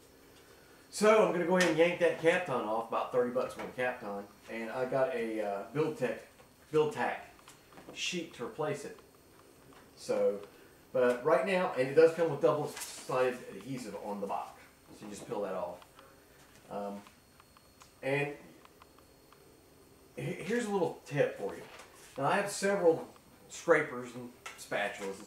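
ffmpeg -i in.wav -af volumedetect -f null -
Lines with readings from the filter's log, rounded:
mean_volume: -33.7 dB
max_volume: -11.5 dB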